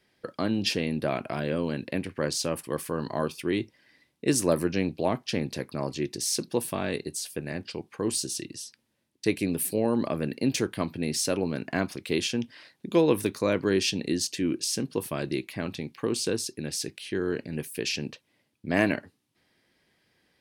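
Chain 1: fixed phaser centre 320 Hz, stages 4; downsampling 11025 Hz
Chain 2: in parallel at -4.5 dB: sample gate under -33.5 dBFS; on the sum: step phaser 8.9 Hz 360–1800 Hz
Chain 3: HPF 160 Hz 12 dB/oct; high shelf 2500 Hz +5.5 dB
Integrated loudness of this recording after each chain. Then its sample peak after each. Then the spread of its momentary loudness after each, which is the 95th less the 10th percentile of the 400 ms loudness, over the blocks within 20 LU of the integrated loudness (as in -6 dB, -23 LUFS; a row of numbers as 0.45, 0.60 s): -31.5, -28.5, -27.5 LUFS; -11.0, -8.0, -6.5 dBFS; 10, 10, 10 LU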